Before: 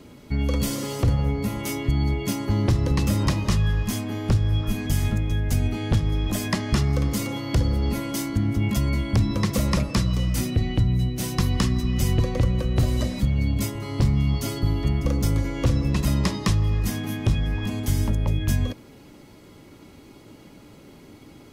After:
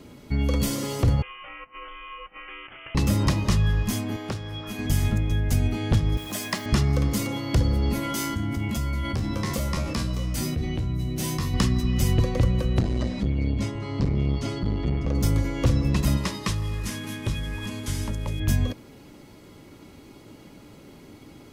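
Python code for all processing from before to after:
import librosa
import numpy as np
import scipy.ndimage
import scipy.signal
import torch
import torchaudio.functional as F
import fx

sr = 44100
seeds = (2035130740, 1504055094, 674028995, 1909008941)

y = fx.chain(x, sr, fx.highpass(hz=1200.0, slope=12),
    fx.over_compress(threshold_db=-39.0, ratio=-0.5),
    fx.freq_invert(carrier_hz=3300), at=(1.22, 2.95))
y = fx.chain(y, sr, fx.highpass(hz=480.0, slope=6),
    fx.high_shelf(hz=7100.0, db=-5.5), at=(4.16, 4.79))
y = fx.chain(y, sr, fx.highpass(hz=100.0, slope=12),
    fx.low_shelf(hz=410.0, db=-10.5),
    fx.quant_dither(seeds[0], bits=8, dither='triangular'), at=(6.17, 6.66))
y = fx.chain(y, sr, fx.comb_fb(f0_hz=77.0, decay_s=0.29, harmonics='all', damping=0.0, mix_pct=90),
    fx.env_flatten(amount_pct=70), at=(8.02, 11.54))
y = fx.chain(y, sr, fx.air_absorb(metres=99.0),
    fx.transformer_sat(knee_hz=190.0), at=(12.79, 15.15))
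y = fx.chain(y, sr, fx.cvsd(bps=64000),
    fx.low_shelf(hz=460.0, db=-7.0),
    fx.notch(hz=740.0, q=6.3), at=(16.17, 18.4))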